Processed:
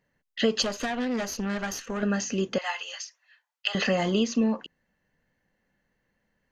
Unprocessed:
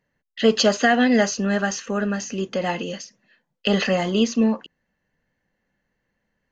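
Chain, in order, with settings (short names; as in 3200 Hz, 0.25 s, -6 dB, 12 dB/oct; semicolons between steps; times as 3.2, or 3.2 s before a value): compressor 4:1, threshold -21 dBFS, peak gain reduction 9 dB; 0.62–2.03 tube stage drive 24 dB, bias 0.8; 2.58–3.75 HPF 880 Hz 24 dB/oct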